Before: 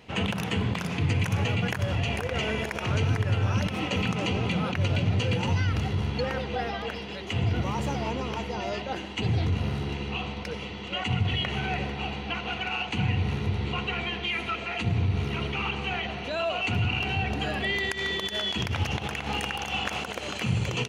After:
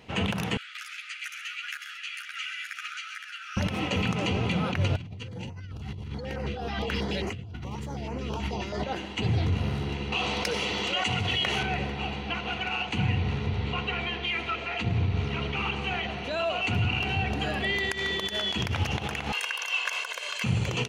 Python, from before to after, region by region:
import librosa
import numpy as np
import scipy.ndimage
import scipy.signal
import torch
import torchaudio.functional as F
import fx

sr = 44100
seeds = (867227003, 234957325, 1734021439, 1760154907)

y = fx.chain(x, sr, fx.brickwall_highpass(low_hz=1200.0),
    fx.echo_single(ms=133, db=-9.0),
    fx.ensemble(), at=(0.57, 3.57))
y = fx.chain(y, sr, fx.low_shelf(hz=150.0, db=4.5),
    fx.over_compress(threshold_db=-34.0, ratio=-1.0),
    fx.filter_held_notch(hz=9.3, low_hz=510.0, high_hz=3500.0), at=(4.96, 8.84))
y = fx.chain(y, sr, fx.bass_treble(bass_db=-9, treble_db=8),
    fx.env_flatten(amount_pct=70), at=(10.12, 11.63))
y = fx.chain(y, sr, fx.lowpass(hz=6300.0, slope=12),
    fx.hum_notches(base_hz=50, count=7), at=(13.18, 15.56))
y = fx.chain(y, sr, fx.highpass(hz=1100.0, slope=12),
    fx.comb(ms=1.9, depth=0.88), at=(19.32, 20.44))